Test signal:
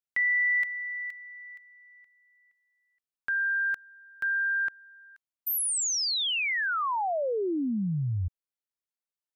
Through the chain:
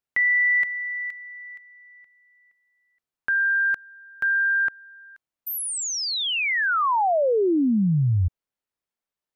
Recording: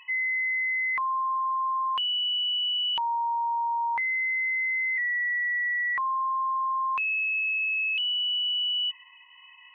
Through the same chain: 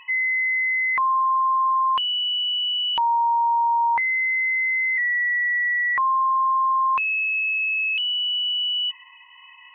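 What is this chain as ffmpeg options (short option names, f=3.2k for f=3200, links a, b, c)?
-af "highshelf=f=2.7k:g=-9.5,volume=8.5dB"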